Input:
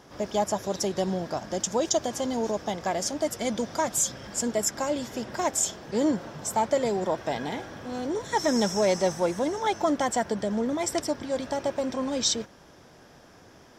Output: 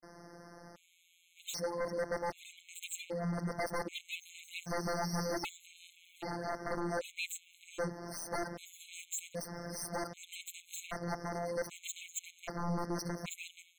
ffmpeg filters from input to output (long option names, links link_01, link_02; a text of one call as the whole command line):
ffmpeg -i in.wav -filter_complex "[0:a]areverse,equalizer=frequency=4000:width=1.2:gain=-5.5,asplit=2[link_01][link_02];[link_02]acompressor=threshold=-35dB:ratio=6,volume=1dB[link_03];[link_01][link_03]amix=inputs=2:normalize=0,afftfilt=real='hypot(re,im)*cos(PI*b)':imag='0':win_size=1024:overlap=0.75,aeval=exprs='0.0531*(abs(mod(val(0)/0.0531+3,4)-2)-1)':channel_layout=same,afftfilt=real='re*gt(sin(2*PI*0.64*pts/sr)*(1-2*mod(floor(b*sr/1024/2100),2)),0)':imag='im*gt(sin(2*PI*0.64*pts/sr)*(1-2*mod(floor(b*sr/1024/2100),2)),0)':win_size=1024:overlap=0.75,volume=-3.5dB" out.wav